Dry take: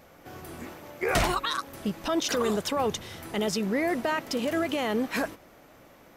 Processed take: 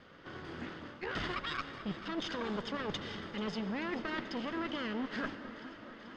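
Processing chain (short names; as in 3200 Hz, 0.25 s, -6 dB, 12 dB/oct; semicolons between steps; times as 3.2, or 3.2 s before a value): minimum comb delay 0.61 ms; LPF 4500 Hz 24 dB/oct; low shelf 89 Hz -10.5 dB; reverse; compressor, threshold -35 dBFS, peak gain reduction 12 dB; reverse; echo with dull and thin repeats by turns 0.218 s, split 1200 Hz, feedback 86%, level -13.5 dB; on a send at -12 dB: reverb RT60 3.4 s, pre-delay 93 ms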